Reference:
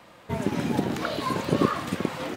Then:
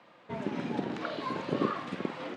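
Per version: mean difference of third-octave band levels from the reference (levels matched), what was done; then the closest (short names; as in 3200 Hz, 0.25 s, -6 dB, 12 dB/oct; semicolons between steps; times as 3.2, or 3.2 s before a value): 4.5 dB: BPF 170–3900 Hz; flutter echo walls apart 8.2 m, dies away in 0.25 s; gain -6.5 dB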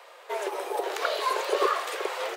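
11.5 dB: steep high-pass 390 Hz 72 dB/oct; spectral gain 0.48–0.84, 1300–7800 Hz -7 dB; gain +2.5 dB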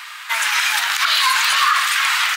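19.5 dB: inverse Chebyshev high-pass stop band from 500 Hz, stop band 50 dB; maximiser +28.5 dB; gain -5.5 dB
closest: first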